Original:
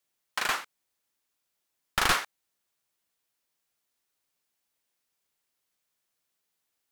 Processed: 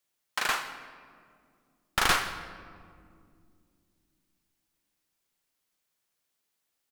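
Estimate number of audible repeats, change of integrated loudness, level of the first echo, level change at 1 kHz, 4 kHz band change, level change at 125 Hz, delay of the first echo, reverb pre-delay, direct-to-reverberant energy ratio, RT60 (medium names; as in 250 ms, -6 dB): 1, -0.5 dB, -19.5 dB, +0.5 dB, +0.5 dB, +1.0 dB, 160 ms, 34 ms, 9.0 dB, 2.3 s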